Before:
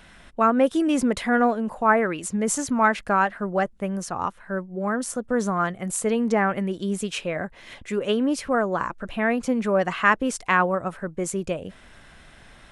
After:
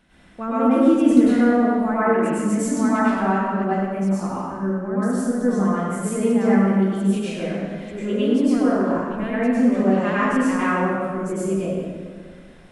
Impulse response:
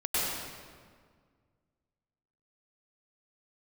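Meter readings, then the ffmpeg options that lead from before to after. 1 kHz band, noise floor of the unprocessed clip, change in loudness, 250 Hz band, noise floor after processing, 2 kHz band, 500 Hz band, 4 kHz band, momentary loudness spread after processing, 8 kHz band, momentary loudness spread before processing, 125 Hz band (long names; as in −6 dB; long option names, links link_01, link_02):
−1.0 dB, −50 dBFS, +3.5 dB, +7.5 dB, −44 dBFS, −3.0 dB, +2.5 dB, −3.5 dB, 10 LU, −4.0 dB, 10 LU, +7.0 dB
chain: -filter_complex "[0:a]equalizer=frequency=250:width=1:gain=10[link_01];[1:a]atrim=start_sample=2205[link_02];[link_01][link_02]afir=irnorm=-1:irlink=0,volume=-12.5dB"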